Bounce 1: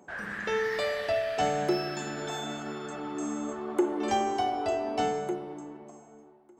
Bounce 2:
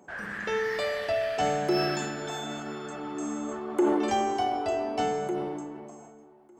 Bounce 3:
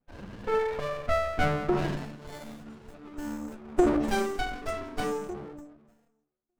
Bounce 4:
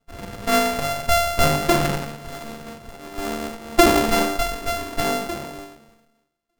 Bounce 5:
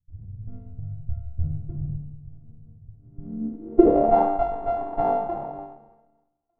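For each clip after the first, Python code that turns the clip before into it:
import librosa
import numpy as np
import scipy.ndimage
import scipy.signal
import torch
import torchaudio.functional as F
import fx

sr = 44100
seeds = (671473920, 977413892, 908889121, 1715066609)

y1 = fx.notch(x, sr, hz=3800.0, q=27.0)
y1 = fx.sustainer(y1, sr, db_per_s=28.0)
y2 = fx.bin_expand(y1, sr, power=2.0)
y2 = fx.filter_sweep_lowpass(y2, sr, from_hz=1000.0, to_hz=8200.0, start_s=1.67, end_s=2.54, q=3.7)
y2 = fx.running_max(y2, sr, window=33)
y2 = y2 * 10.0 ** (5.0 / 20.0)
y3 = np.r_[np.sort(y2[:len(y2) // 64 * 64].reshape(-1, 64), axis=1).ravel(), y2[len(y2) // 64 * 64:]]
y3 = y3 * 10.0 ** (8.0 / 20.0)
y4 = fx.room_shoebox(y3, sr, seeds[0], volume_m3=3000.0, walls='furnished', distance_m=0.49)
y4 = fx.filter_sweep_lowpass(y4, sr, from_hz=100.0, to_hz=810.0, start_s=2.98, end_s=4.19, q=5.9)
y4 = y4 * 10.0 ** (-6.0 / 20.0)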